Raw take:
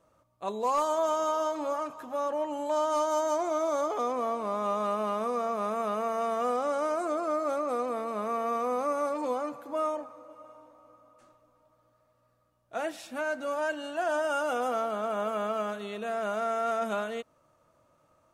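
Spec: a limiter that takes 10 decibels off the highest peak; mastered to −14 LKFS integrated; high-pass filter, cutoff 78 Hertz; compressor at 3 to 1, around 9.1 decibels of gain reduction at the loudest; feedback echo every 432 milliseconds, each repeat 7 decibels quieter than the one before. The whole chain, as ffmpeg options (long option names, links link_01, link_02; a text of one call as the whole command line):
ffmpeg -i in.wav -af "highpass=78,acompressor=threshold=-37dB:ratio=3,alimiter=level_in=12.5dB:limit=-24dB:level=0:latency=1,volume=-12.5dB,aecho=1:1:432|864|1296|1728|2160:0.447|0.201|0.0905|0.0407|0.0183,volume=29.5dB" out.wav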